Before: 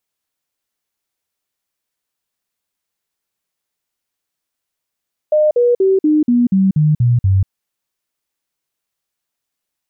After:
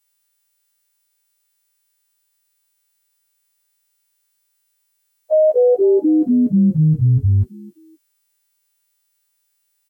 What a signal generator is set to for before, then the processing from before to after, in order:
stepped sine 609 Hz down, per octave 3, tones 9, 0.19 s, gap 0.05 s -9 dBFS
partials quantised in pitch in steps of 2 st; frequency-shifting echo 260 ms, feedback 30%, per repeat +110 Hz, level -23 dB

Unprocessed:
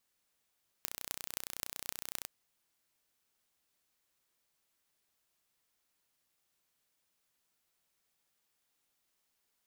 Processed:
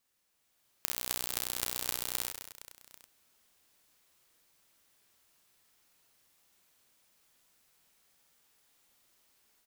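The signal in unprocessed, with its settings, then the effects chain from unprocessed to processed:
pulse train 30.7 per s, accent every 8, -7.5 dBFS 1.43 s
level rider gain up to 8 dB; on a send: reverse bouncing-ball echo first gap 50 ms, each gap 1.6×, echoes 5

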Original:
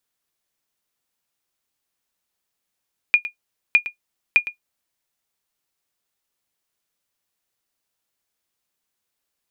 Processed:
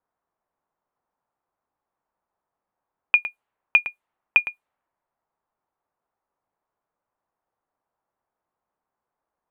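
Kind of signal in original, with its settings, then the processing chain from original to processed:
sonar ping 2.43 kHz, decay 0.11 s, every 0.61 s, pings 3, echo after 0.11 s, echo -14.5 dB -4.5 dBFS
peaking EQ 910 Hz +10.5 dB 1.6 oct; level-controlled noise filter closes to 1.2 kHz, open at -21.5 dBFS; peaking EQ 5.3 kHz -12.5 dB 0.94 oct

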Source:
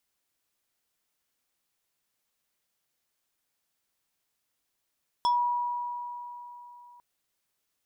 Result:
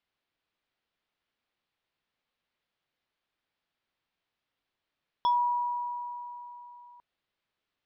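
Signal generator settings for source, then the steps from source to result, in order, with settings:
FM tone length 1.75 s, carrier 968 Hz, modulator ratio 4.49, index 0.62, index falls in 0.18 s exponential, decay 3.47 s, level -20.5 dB
low-pass 4 kHz 24 dB/octave

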